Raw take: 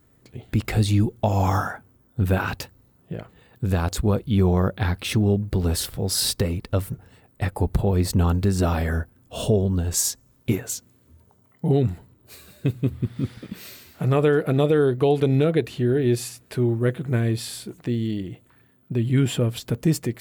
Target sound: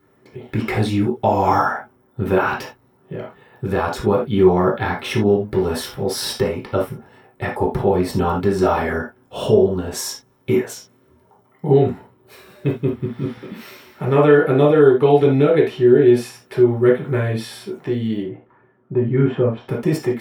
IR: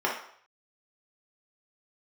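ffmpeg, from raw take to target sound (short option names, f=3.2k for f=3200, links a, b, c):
-filter_complex "[0:a]asettb=1/sr,asplit=3[a][b][c];[a]atrim=end=18.234[d];[b]atrim=start=18.23:end=19.69,asetpts=PTS-STARTPTS,afade=t=in:d=0.004:c=qsin,afade=t=out:st=1.456:d=0.004:c=qsin,lowpass=1.5k[e];[c]atrim=start=19.686[f];[d][e]acrossfade=d=0.004:c1=hsin:c2=qsin[g];[g][f]acrossfade=d=0.004:c1=qsin:c2=hsin[h];[1:a]atrim=start_sample=2205,atrim=end_sample=3969[i];[h][i]afir=irnorm=-1:irlink=0,volume=-4.5dB"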